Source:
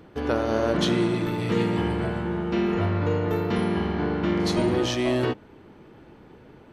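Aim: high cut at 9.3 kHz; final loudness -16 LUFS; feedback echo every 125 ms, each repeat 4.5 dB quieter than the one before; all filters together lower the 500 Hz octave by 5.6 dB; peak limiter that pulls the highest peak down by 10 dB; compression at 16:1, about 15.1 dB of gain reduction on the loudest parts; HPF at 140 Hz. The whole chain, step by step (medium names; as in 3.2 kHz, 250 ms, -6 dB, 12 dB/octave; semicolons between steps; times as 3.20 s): high-pass 140 Hz; low-pass 9.3 kHz; peaking EQ 500 Hz -8 dB; compression 16:1, threshold -37 dBFS; peak limiter -35.5 dBFS; feedback delay 125 ms, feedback 60%, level -4.5 dB; trim +28 dB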